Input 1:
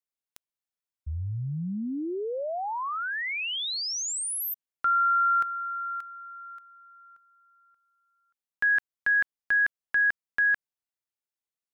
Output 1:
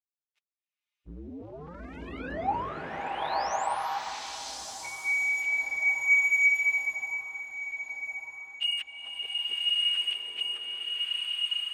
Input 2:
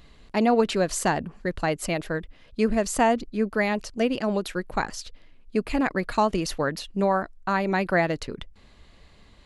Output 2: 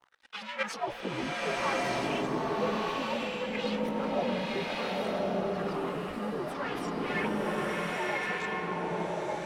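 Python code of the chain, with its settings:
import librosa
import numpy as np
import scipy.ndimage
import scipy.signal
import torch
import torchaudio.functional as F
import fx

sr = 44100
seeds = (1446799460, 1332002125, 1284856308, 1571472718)

y = fx.partial_stretch(x, sr, pct=129)
y = fx.high_shelf(y, sr, hz=8600.0, db=-7.5)
y = fx.leveller(y, sr, passes=5)
y = fx.level_steps(y, sr, step_db=13)
y = fx.chorus_voices(y, sr, voices=2, hz=0.48, base_ms=16, depth_ms=2.7, mix_pct=70)
y = fx.wah_lfo(y, sr, hz=0.61, low_hz=310.0, high_hz=2700.0, q=2.0)
y = fx.transient(y, sr, attack_db=2, sustain_db=7)
y = fx.echo_filtered(y, sr, ms=1140, feedback_pct=63, hz=4900.0, wet_db=-17)
y = fx.rev_bloom(y, sr, seeds[0], attack_ms=1190, drr_db=-5.0)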